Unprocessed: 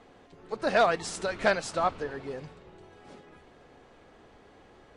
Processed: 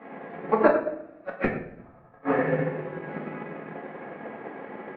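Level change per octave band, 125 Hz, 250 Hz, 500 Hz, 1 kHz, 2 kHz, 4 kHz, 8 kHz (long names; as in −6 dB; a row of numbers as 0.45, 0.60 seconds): +8.5 dB, +9.5 dB, +3.5 dB, 0.0 dB, −0.5 dB, below −15 dB, below −35 dB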